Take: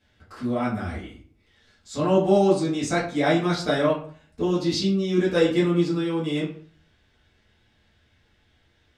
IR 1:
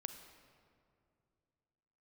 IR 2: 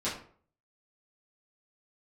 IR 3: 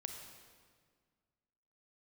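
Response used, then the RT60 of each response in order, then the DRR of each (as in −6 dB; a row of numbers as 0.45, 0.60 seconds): 2; 2.4, 0.50, 1.8 seconds; 7.5, −10.0, 4.0 decibels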